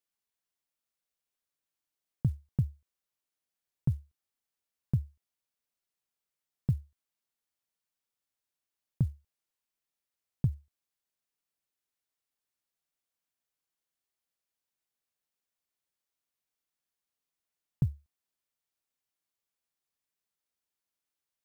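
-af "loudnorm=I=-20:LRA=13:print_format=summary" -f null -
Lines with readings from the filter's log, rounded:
Input Integrated:    -34.7 LUFS
Input True Peak:     -16.7 dBTP
Input LRA:             4.7 LU
Input Threshold:     -45.5 LUFS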